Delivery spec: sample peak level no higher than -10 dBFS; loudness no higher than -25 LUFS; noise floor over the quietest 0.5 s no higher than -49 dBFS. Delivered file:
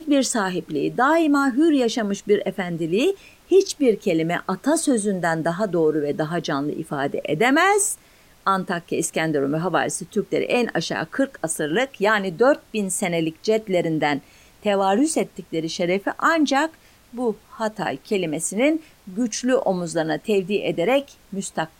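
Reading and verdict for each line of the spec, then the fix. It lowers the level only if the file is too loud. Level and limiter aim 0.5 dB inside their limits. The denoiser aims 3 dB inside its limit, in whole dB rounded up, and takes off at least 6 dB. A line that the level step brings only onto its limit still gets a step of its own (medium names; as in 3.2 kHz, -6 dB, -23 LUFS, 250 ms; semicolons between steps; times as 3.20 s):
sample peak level -6.5 dBFS: fail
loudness -22.0 LUFS: fail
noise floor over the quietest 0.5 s -52 dBFS: pass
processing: trim -3.5 dB; peak limiter -10.5 dBFS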